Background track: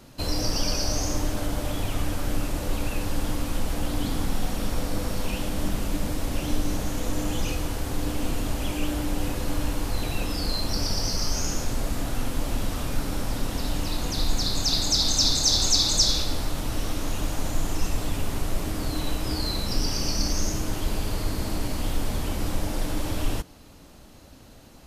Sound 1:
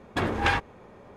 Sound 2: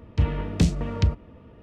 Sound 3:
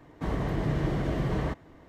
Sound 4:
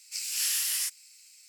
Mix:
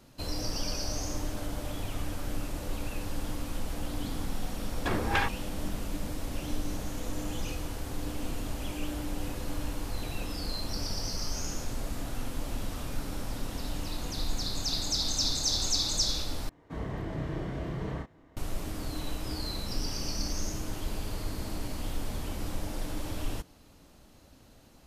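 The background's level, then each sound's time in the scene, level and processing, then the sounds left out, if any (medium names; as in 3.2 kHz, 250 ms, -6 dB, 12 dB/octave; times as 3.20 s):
background track -7.5 dB
4.69 s: add 1 -4 dB
16.49 s: replace with 3 -8 dB + doubling 31 ms -3.5 dB
not used: 2, 4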